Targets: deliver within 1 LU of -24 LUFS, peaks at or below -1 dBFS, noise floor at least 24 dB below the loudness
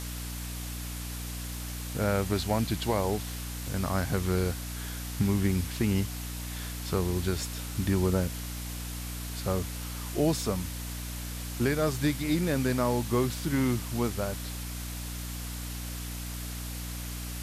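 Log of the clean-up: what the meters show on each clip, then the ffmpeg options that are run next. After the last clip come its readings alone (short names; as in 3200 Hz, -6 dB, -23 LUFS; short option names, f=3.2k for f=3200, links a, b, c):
hum 60 Hz; harmonics up to 300 Hz; hum level -35 dBFS; noise floor -37 dBFS; noise floor target -55 dBFS; loudness -31.0 LUFS; peak -14.0 dBFS; loudness target -24.0 LUFS
-> -af "bandreject=f=60:t=h:w=6,bandreject=f=120:t=h:w=6,bandreject=f=180:t=h:w=6,bandreject=f=240:t=h:w=6,bandreject=f=300:t=h:w=6"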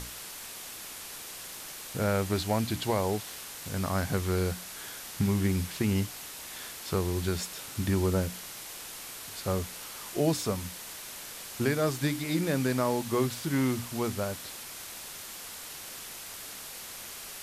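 hum none; noise floor -43 dBFS; noise floor target -56 dBFS
-> -af "afftdn=nr=13:nf=-43"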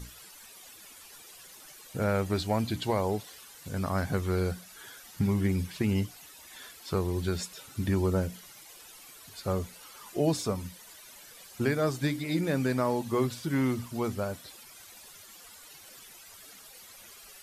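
noise floor -51 dBFS; noise floor target -55 dBFS
-> -af "afftdn=nr=6:nf=-51"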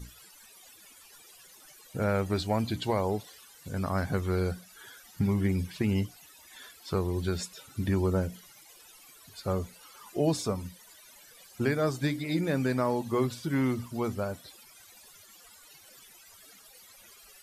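noise floor -55 dBFS; loudness -30.5 LUFS; peak -14.0 dBFS; loudness target -24.0 LUFS
-> -af "volume=6.5dB"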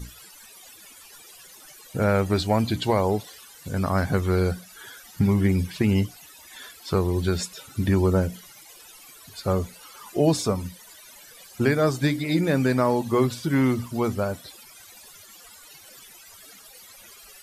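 loudness -24.0 LUFS; peak -7.5 dBFS; noise floor -48 dBFS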